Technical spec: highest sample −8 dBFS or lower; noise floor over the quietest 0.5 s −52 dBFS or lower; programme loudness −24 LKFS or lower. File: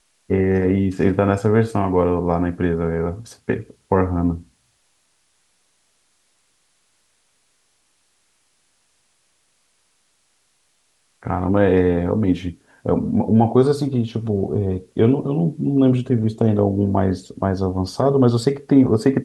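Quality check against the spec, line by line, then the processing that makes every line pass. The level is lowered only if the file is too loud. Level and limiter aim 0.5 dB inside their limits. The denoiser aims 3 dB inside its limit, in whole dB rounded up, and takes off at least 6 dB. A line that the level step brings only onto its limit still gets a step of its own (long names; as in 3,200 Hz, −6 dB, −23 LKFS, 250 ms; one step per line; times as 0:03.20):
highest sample −3.5 dBFS: out of spec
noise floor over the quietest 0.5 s −64 dBFS: in spec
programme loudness −19.5 LKFS: out of spec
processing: level −5 dB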